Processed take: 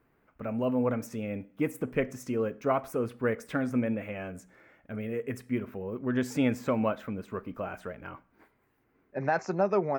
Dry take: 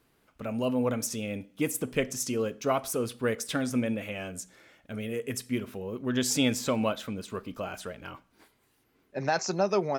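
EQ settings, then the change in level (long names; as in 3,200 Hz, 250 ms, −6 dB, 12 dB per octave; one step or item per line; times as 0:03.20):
flat-topped bell 6,200 Hz −16 dB 2.4 octaves
0.0 dB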